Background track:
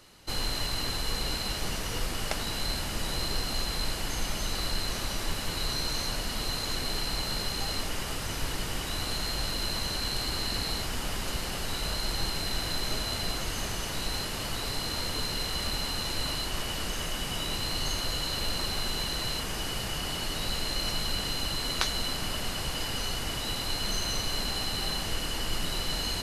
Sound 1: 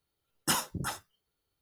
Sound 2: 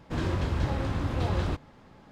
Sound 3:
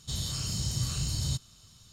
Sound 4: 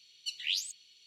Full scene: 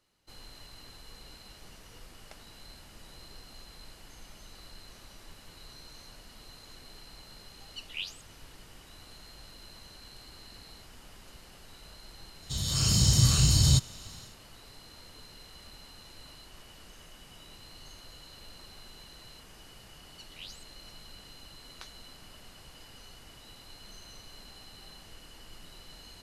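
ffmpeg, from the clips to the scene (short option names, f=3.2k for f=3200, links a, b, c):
-filter_complex "[4:a]asplit=2[a][b];[0:a]volume=-19dB[c];[a]highpass=f=2.5k:t=q:w=3.8[d];[3:a]dynaudnorm=f=220:g=3:m=10dB[e];[d]atrim=end=1.06,asetpts=PTS-STARTPTS,volume=-13dB,afade=t=in:d=0.004:c=hsin,afade=t=out:st=1.056:d=0.004:c=hsin,adelay=7500[f];[e]atrim=end=1.92,asetpts=PTS-STARTPTS,volume=-1dB,afade=t=in:d=0.004:c=hsin,afade=t=out:st=1.916:d=0.004:c=hsin,adelay=12420[g];[b]atrim=end=1.06,asetpts=PTS-STARTPTS,volume=-14.5dB,afade=t=in:d=0.004:c=hsin,afade=t=out:st=1.056:d=0.004:c=hsin,adelay=19920[h];[c][f][g][h]amix=inputs=4:normalize=0"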